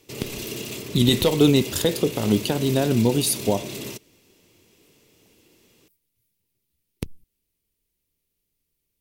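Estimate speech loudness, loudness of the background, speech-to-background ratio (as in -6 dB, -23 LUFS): -21.5 LUFS, -32.5 LUFS, 11.0 dB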